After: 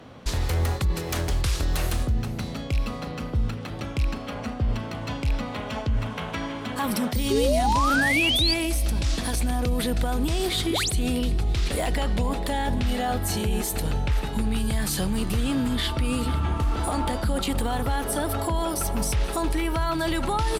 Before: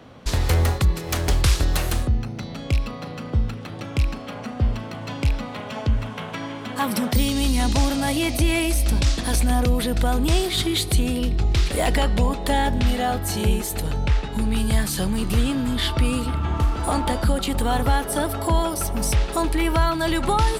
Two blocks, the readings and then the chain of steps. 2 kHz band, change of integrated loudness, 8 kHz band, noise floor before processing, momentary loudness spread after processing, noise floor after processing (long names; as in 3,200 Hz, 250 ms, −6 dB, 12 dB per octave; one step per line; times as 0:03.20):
0.0 dB, −3.0 dB, −3.0 dB, −34 dBFS, 8 LU, −34 dBFS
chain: on a send: repeating echo 480 ms, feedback 58%, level −20 dB
on the sum: sound drawn into the spectrogram rise, 0:10.70–0:10.91, 220–11,000 Hz −24 dBFS
reversed playback
downward compressor, threshold −18 dBFS, peak gain reduction 5.5 dB
reversed playback
brickwall limiter −16 dBFS, peak gain reduction 5.5 dB
sound drawn into the spectrogram rise, 0:07.30–0:08.54, 380–4,900 Hz −23 dBFS
Opus 96 kbit/s 48,000 Hz